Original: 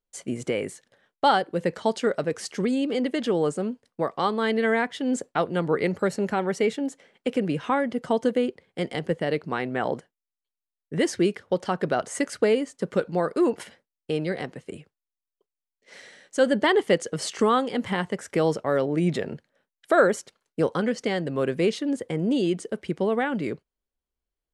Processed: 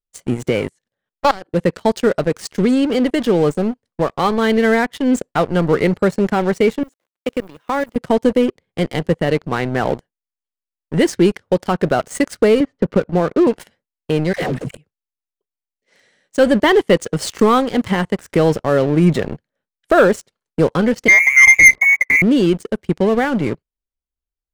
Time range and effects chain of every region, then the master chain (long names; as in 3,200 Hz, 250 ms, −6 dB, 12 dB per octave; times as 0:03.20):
0:00.69–0:01.54: output level in coarse steps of 18 dB + highs frequency-modulated by the lows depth 0.24 ms
0:06.83–0:07.96: hold until the input has moved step −46.5 dBFS + high-pass filter 310 Hz + output level in coarse steps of 13 dB
0:12.60–0:13.47: high-frequency loss of the air 340 metres + multiband upward and downward compressor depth 70%
0:14.33–0:14.75: all-pass dispersion lows, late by 94 ms, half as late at 620 Hz + leveller curve on the samples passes 2
0:21.08–0:22.22: hollow resonant body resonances 390/1,400 Hz, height 18 dB, ringing for 40 ms + voice inversion scrambler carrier 2,500 Hz
whole clip: leveller curve on the samples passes 3; low-shelf EQ 150 Hz +10 dB; level −4 dB